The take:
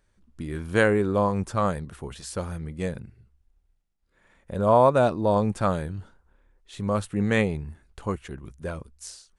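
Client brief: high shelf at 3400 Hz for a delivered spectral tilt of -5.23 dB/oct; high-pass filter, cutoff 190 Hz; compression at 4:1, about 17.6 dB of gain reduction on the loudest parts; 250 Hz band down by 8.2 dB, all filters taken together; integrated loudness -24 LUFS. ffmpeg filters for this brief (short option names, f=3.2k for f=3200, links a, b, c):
-af "highpass=190,equalizer=f=250:t=o:g=-8.5,highshelf=f=3.4k:g=-8,acompressor=threshold=-36dB:ratio=4,volume=16.5dB"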